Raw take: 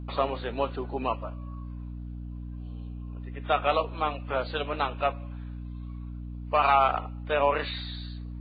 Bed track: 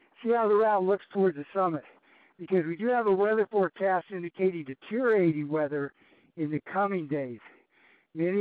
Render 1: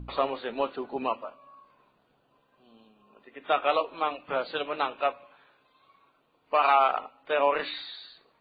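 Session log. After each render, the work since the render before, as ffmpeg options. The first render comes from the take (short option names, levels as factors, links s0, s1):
-af "bandreject=f=60:t=h:w=4,bandreject=f=120:t=h:w=4,bandreject=f=180:t=h:w=4,bandreject=f=240:t=h:w=4,bandreject=f=300:t=h:w=4"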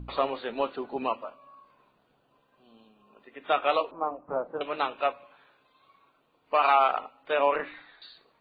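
-filter_complex "[0:a]asettb=1/sr,asplit=3[s0][s1][s2];[s0]atrim=end=3.914[s3];[s1]atrim=start=3.91:end=4.61,asetpts=PTS-STARTPTS,afade=t=in:d=0.004:c=qsin,afade=t=out:st=0.696:d=0.004:c=qsin,lowpass=f=1100:w=0.5412,lowpass=f=1100:w=1.3066[s4];[s2]atrim=start=4.606[s5];[s3][s4]acrossfade=d=0.004:c1=hsin:c2=qsin[s6];[s6][s5]acrossfade=d=0.004:c1=qsin:c2=hsin,asettb=1/sr,asplit=3[s7][s8][s9];[s7]atrim=end=7.564[s10];[s8]atrim=start=7.56:end=8.02,asetpts=PTS-STARTPTS,afade=t=in:d=0.004:c=qsin,afade=t=out:st=0.456:d=0.004:c=qsin,lowpass=f=2100:w=0.5412,lowpass=f=2100:w=1.3066[s11];[s9]atrim=start=8.016[s12];[s10][s11]acrossfade=d=0.004:c1=hsin:c2=qsin[s13];[s13][s12]acrossfade=d=0.004:c1=qsin:c2=hsin"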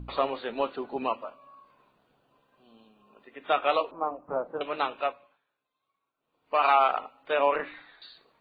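-filter_complex "[0:a]asplit=3[s0][s1][s2];[s0]atrim=end=5.41,asetpts=PTS-STARTPTS,afade=t=out:st=4.94:d=0.47:silence=0.105925[s3];[s1]atrim=start=5.41:end=6.17,asetpts=PTS-STARTPTS,volume=0.106[s4];[s2]atrim=start=6.17,asetpts=PTS-STARTPTS,afade=t=in:d=0.47:silence=0.105925[s5];[s3][s4][s5]concat=n=3:v=0:a=1"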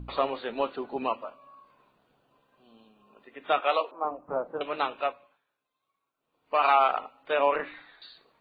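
-filter_complex "[0:a]asettb=1/sr,asplit=3[s0][s1][s2];[s0]atrim=end=3.604[s3];[s1]atrim=start=3.6:end=4.05,asetpts=PTS-STARTPTS,afade=t=in:d=0.004:c=qsin,afade=t=out:st=0.446:d=0.004:c=qsin,highpass=390[s4];[s2]atrim=start=4.046[s5];[s3][s4]acrossfade=d=0.004:c1=hsin:c2=qsin[s6];[s6][s5]acrossfade=d=0.004:c1=qsin:c2=hsin"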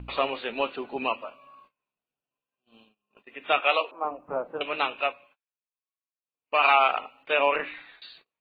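-af "agate=range=0.0447:threshold=0.00158:ratio=16:detection=peak,equalizer=f=2600:w=2.2:g=11"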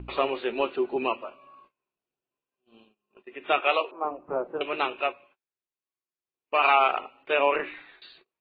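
-af "lowpass=f=3400:p=1,equalizer=f=370:t=o:w=0.26:g=12"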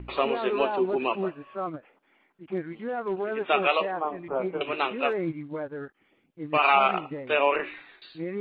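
-filter_complex "[1:a]volume=0.531[s0];[0:a][s0]amix=inputs=2:normalize=0"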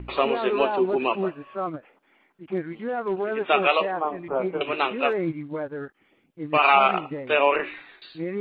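-af "volume=1.41"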